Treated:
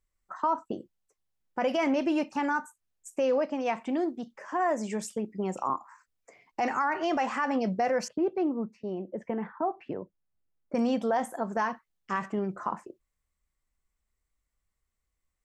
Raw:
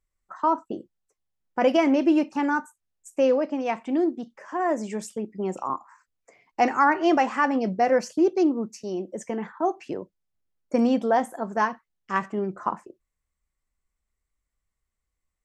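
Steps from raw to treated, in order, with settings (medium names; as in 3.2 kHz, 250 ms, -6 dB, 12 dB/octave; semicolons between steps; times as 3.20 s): dynamic bell 330 Hz, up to -7 dB, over -35 dBFS, Q 1.7; peak limiter -18.5 dBFS, peak gain reduction 10 dB; 8.08–10.75 s: distance through air 480 m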